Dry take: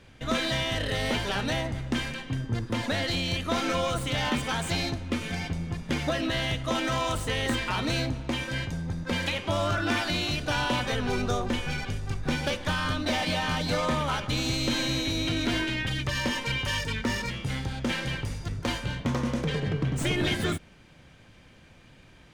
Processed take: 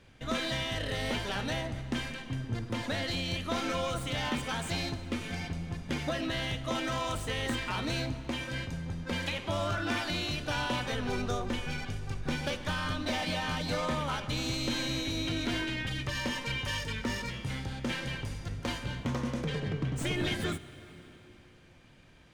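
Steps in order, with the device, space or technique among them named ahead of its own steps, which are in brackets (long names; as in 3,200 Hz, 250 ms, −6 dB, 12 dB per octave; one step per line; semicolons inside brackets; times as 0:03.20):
compressed reverb return (on a send at −10.5 dB: convolution reverb RT60 2.8 s, pre-delay 41 ms + downward compressor, threshold −29 dBFS, peak gain reduction 7 dB)
on the sum: level −5 dB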